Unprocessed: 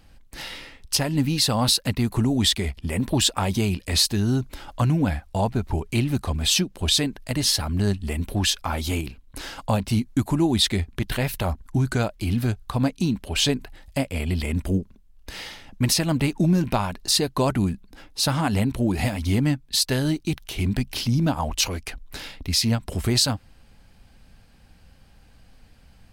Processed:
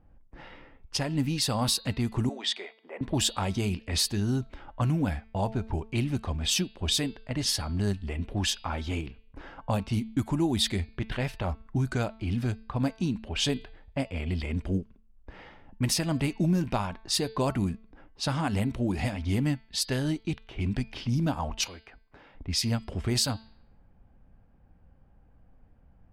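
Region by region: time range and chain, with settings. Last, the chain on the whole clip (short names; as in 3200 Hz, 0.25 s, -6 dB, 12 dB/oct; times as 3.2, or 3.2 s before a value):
2.29–3.01 HPF 430 Hz 24 dB/oct + air absorption 59 m
21.64–22.35 HPF 60 Hz 6 dB/oct + low shelf 370 Hz -7 dB + compressor 2:1, threshold -37 dBFS
whole clip: low-pass opened by the level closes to 940 Hz, open at -16.5 dBFS; notch 4100 Hz, Q 13; de-hum 221.9 Hz, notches 22; gain -5.5 dB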